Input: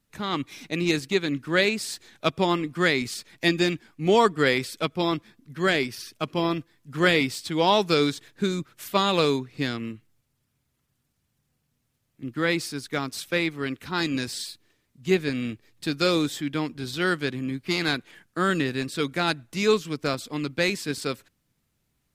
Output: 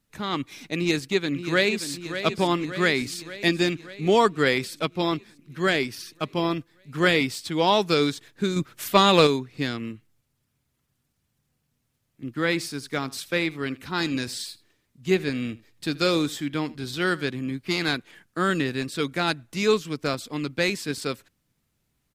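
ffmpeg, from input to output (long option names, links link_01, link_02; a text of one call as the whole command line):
ffmpeg -i in.wav -filter_complex "[0:a]asplit=2[link_01][link_02];[link_02]afade=type=in:start_time=0.77:duration=0.01,afade=type=out:start_time=1.89:duration=0.01,aecho=0:1:580|1160|1740|2320|2900|3480|4060|4640|5220:0.316228|0.205548|0.133606|0.0868441|0.0564486|0.0366916|0.0238495|0.0155022|0.0100764[link_03];[link_01][link_03]amix=inputs=2:normalize=0,asettb=1/sr,asplit=3[link_04][link_05][link_06];[link_04]atrim=end=8.564[link_07];[link_05]atrim=start=8.56:end=9.27,asetpts=PTS-STARTPTS,afade=type=in:duration=0.004:curve=qsin,afade=type=out:start_time=0.706:duration=0.004:curve=qsin,acontrast=47[link_08];[link_06]atrim=start=9.266[link_09];[link_07][link_08]acrossfade=duration=0.004:curve1=hsin:curve2=qsin[link_10];[link_10][link_09]acrossfade=duration=0.004:curve1=qsin:curve2=hsin,asplit=3[link_11][link_12][link_13];[link_11]afade=type=out:start_time=12.51:duration=0.02[link_14];[link_12]aecho=1:1:80:0.0944,afade=type=in:start_time=12.51:duration=0.02,afade=type=out:start_time=17.23:duration=0.02[link_15];[link_13]afade=type=in:start_time=17.23:duration=0.02[link_16];[link_14][link_15][link_16]amix=inputs=3:normalize=0" out.wav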